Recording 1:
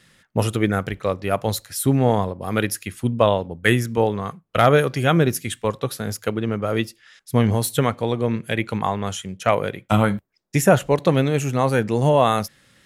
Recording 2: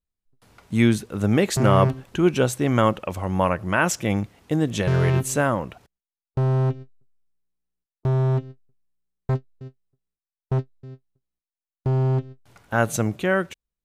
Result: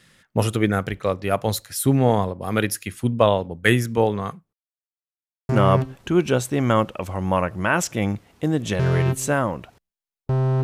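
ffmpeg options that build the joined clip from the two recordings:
-filter_complex "[0:a]apad=whole_dur=10.63,atrim=end=10.63,asplit=2[a][b];[a]atrim=end=4.53,asetpts=PTS-STARTPTS,afade=t=out:st=4.526:d=0.004:c=hsin[c];[b]atrim=start=4.53:end=5.49,asetpts=PTS-STARTPTS,volume=0[d];[1:a]atrim=start=1.57:end=6.71,asetpts=PTS-STARTPTS,afade=t=in:d=0.004:c=hsin[e];[c][d][e]concat=n=3:v=0:a=1"

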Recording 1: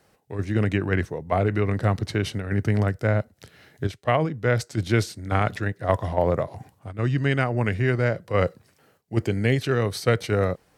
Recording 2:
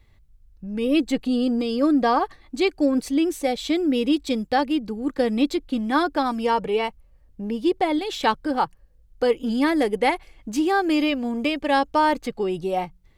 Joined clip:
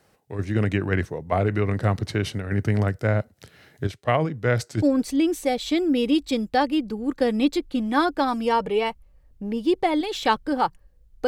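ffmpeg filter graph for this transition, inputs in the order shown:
-filter_complex "[0:a]apad=whole_dur=11.27,atrim=end=11.27,atrim=end=4.822[a];[1:a]atrim=start=2.798:end=9.25[b];[a][b]acrossfade=d=0.004:c1=hsin:c2=hsin"

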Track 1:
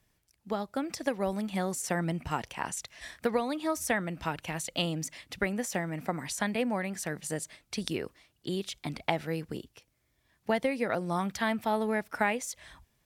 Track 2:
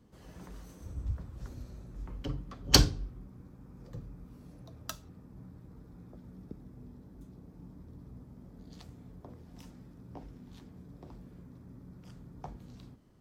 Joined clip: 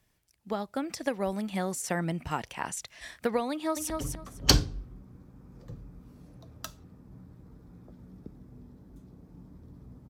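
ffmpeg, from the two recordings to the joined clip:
-filter_complex "[0:a]apad=whole_dur=10.09,atrim=end=10.09,atrim=end=3.902[a];[1:a]atrim=start=2.148:end=8.34[b];[a][b]acrossfade=d=0.004:c1=hsin:c2=hsin,asplit=2[c][d];[d]afade=t=in:st=3.51:d=0.01,afade=t=out:st=3.9:d=0.01,aecho=0:1:250|500|750:0.595662|0.119132|0.0238265[e];[c][e]amix=inputs=2:normalize=0"

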